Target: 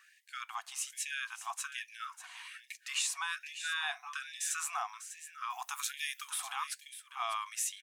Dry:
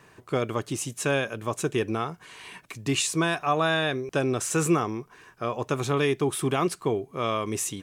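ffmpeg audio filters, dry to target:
ffmpeg -i in.wav -filter_complex "[0:a]asettb=1/sr,asplit=3[link_01][link_02][link_03];[link_01]atrim=end=5.504[link_04];[link_02]atrim=start=5.5:end=6.3,asetpts=PTS-STARTPTS,afade=type=in:duration=0.004:curve=qsin,afade=type=out:start_time=0.796:duration=0.004:curve=qsin,aemphasis=mode=production:type=bsi[link_05];[link_03]atrim=start=6.296[link_06];[link_04][link_05]acrossfade=duration=0.004:curve1=hsin:curve2=qsin[link_07];[link_07][link_06]acrossfade=duration=0.004:curve1=qsin:curve2=hsin,alimiter=limit=-16.5dB:level=0:latency=1:release=166,aecho=1:1:597:0.266,afftfilt=real='re*gte(b*sr/1024,650*pow(1700/650,0.5+0.5*sin(2*PI*1.2*pts/sr)))':imag='im*gte(b*sr/1024,650*pow(1700/650,0.5+0.5*sin(2*PI*1.2*pts/sr)))':win_size=1024:overlap=0.75,volume=-4.5dB" out.wav

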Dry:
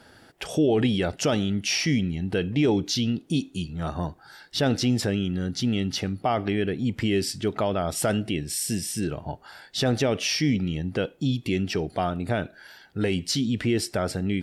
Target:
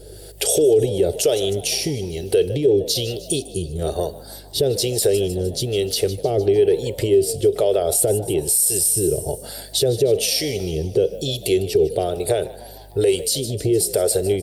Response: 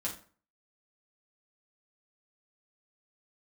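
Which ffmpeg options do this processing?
-filter_complex "[0:a]asplit=3[link_01][link_02][link_03];[link_01]afade=type=out:start_time=6.12:duration=0.02[link_04];[link_02]highshelf=frequency=2900:gain=-2.5,afade=type=in:start_time=6.12:duration=0.02,afade=type=out:start_time=8.46:duration=0.02[link_05];[link_03]afade=type=in:start_time=8.46:duration=0.02[link_06];[link_04][link_05][link_06]amix=inputs=3:normalize=0,acrossover=split=460[link_07][link_08];[link_07]aeval=exprs='val(0)*(1-0.7/2+0.7/2*cos(2*PI*1.1*n/s))':channel_layout=same[link_09];[link_08]aeval=exprs='val(0)*(1-0.7/2-0.7/2*cos(2*PI*1.1*n/s))':channel_layout=same[link_10];[link_09][link_10]amix=inputs=2:normalize=0,aeval=exprs='val(0)+0.00224*(sin(2*PI*50*n/s)+sin(2*PI*2*50*n/s)/2+sin(2*PI*3*50*n/s)/3+sin(2*PI*4*50*n/s)/4+sin(2*PI*5*50*n/s)/5)':channel_layout=same,acompressor=threshold=-28dB:ratio=8,aexciter=amount=5.8:drive=1.1:freq=7600,firequalizer=gain_entry='entry(120,0);entry(230,-17);entry(400,14);entry(1000,-15);entry(4000,7);entry(5900,5);entry(13000,4)':delay=0.05:min_phase=1,asplit=6[link_11][link_12][link_13][link_14][link_15][link_16];[link_12]adelay=152,afreqshift=59,volume=-18dB[link_17];[link_13]adelay=304,afreqshift=118,volume=-22.9dB[link_18];[link_14]adelay=456,afreqshift=177,volume=-27.8dB[link_19];[link_15]adelay=608,afreqshift=236,volume=-32.6dB[link_20];[link_16]adelay=760,afreqshift=295,volume=-37.5dB[link_21];[link_11][link_17][link_18][link_19][link_20][link_21]amix=inputs=6:normalize=0,alimiter=level_in=18dB:limit=-1dB:release=50:level=0:latency=1,volume=-7dB" -ar 48000 -c:a libopus -b:a 48k

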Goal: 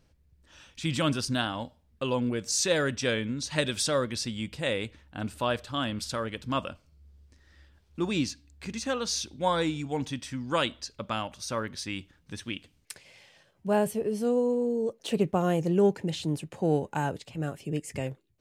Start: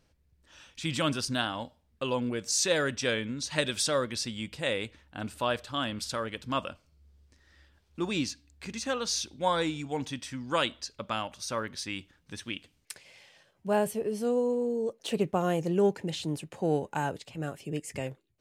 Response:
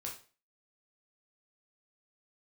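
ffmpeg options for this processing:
-af "lowshelf=frequency=300:gain=5"

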